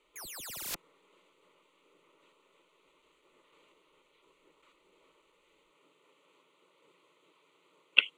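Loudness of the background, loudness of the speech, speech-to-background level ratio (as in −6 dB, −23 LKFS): −40.0 LKFS, −26.5 LKFS, 13.5 dB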